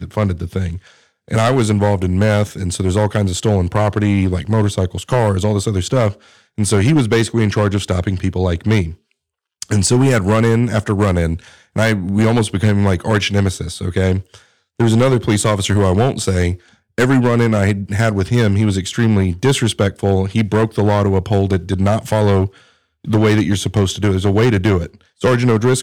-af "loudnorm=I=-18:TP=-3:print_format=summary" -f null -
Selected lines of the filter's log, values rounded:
Input Integrated:    -16.1 LUFS
Input True Peak:      -5.8 dBTP
Input LRA:             1.2 LU
Input Threshold:     -26.4 LUFS